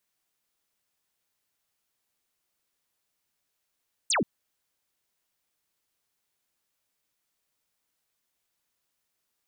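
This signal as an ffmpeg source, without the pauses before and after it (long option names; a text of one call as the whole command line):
ffmpeg -f lavfi -i "aevalsrc='0.0794*clip(t/0.002,0,1)*clip((0.13-t)/0.002,0,1)*sin(2*PI*9400*0.13/log(160/9400)*(exp(log(160/9400)*t/0.13)-1))':duration=0.13:sample_rate=44100" out.wav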